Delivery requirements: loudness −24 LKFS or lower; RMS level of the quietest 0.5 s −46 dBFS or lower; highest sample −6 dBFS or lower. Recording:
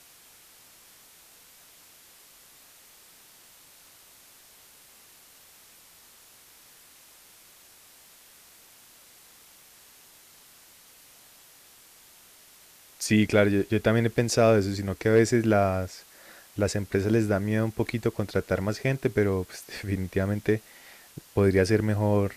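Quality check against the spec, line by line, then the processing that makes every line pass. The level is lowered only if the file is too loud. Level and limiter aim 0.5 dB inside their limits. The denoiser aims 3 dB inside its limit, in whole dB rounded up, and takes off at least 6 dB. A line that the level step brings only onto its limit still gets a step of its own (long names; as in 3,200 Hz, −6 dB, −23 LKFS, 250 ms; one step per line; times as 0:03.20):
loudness −25.5 LKFS: in spec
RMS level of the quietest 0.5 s −54 dBFS: in spec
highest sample −7.5 dBFS: in spec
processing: no processing needed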